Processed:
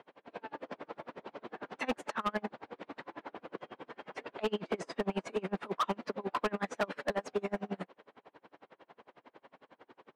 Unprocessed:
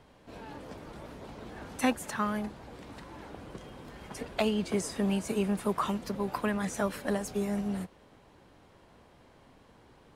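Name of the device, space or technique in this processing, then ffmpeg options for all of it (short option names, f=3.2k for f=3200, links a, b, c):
helicopter radio: -af "highpass=350,lowpass=2.7k,aeval=exprs='val(0)*pow(10,-34*(0.5-0.5*cos(2*PI*11*n/s))/20)':c=same,asoftclip=type=hard:threshold=-34.5dB,volume=9dB"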